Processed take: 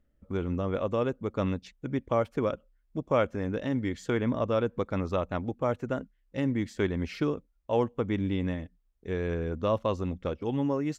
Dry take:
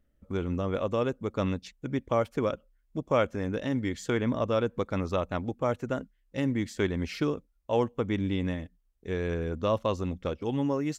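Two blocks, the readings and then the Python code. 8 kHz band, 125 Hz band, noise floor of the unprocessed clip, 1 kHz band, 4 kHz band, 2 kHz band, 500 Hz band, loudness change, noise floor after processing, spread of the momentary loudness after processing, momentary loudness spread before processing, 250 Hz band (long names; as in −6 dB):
can't be measured, 0.0 dB, −70 dBFS, −0.5 dB, −3.0 dB, −1.5 dB, 0.0 dB, 0.0 dB, −70 dBFS, 8 LU, 8 LU, 0.0 dB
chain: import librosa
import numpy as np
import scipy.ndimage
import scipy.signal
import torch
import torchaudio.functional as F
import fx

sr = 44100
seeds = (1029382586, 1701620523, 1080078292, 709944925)

y = fx.high_shelf(x, sr, hz=4000.0, db=-7.5)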